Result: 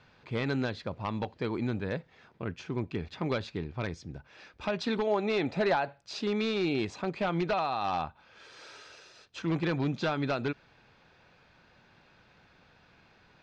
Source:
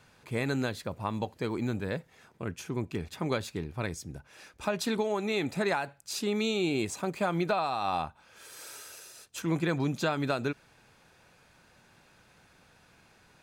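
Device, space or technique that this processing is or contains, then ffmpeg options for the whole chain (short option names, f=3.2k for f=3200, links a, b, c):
synthesiser wavefolder: -filter_complex "[0:a]aeval=exprs='0.0794*(abs(mod(val(0)/0.0794+3,4)-2)-1)':c=same,lowpass=f=4.8k:w=0.5412,lowpass=f=4.8k:w=1.3066,asettb=1/sr,asplit=3[a][b][c];[a]atrim=end=5.074[d];[b]atrim=start=5.07:end=6.22,asetpts=PTS-STARTPTS,afade=t=in:d=0.004:c=qsin,afade=t=out:st=1.146:d=0.004:c=qsin,equalizer=f=630:t=o:w=1.1:g=5.5[e];[c]atrim=start=6.216[f];[d][e]acrossfade=d=0.004:c1=hsin:c2=qsin[g];[g][f]acrossfade=d=0.004:c1=qsin:c2=hsin"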